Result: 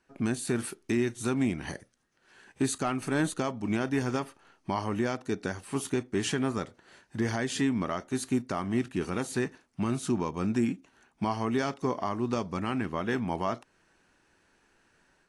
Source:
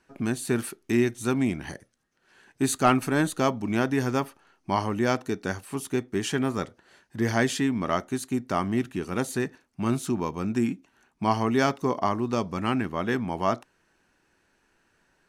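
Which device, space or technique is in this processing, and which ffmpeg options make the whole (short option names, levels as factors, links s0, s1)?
low-bitrate web radio: -af "dynaudnorm=f=130:g=3:m=2.11,alimiter=limit=0.251:level=0:latency=1:release=294,volume=0.531" -ar 24000 -c:a aac -b:a 48k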